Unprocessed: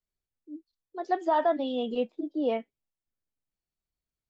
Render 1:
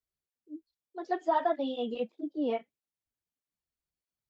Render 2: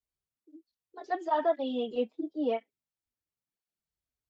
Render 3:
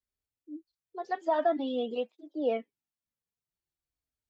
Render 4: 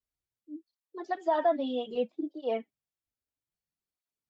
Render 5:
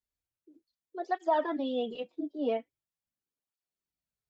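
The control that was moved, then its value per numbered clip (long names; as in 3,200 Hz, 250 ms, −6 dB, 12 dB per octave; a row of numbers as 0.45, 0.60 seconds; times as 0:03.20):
through-zero flanger with one copy inverted, nulls at: 1.6, 0.96, 0.23, 0.62, 0.42 Hertz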